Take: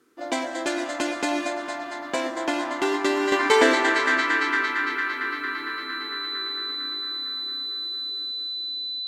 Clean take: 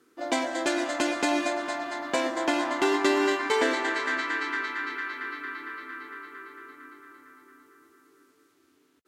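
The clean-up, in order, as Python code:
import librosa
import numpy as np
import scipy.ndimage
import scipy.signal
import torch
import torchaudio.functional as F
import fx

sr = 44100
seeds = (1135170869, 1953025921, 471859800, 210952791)

y = fx.notch(x, sr, hz=4000.0, q=30.0)
y = fx.gain(y, sr, db=fx.steps((0.0, 0.0), (3.32, -7.0)))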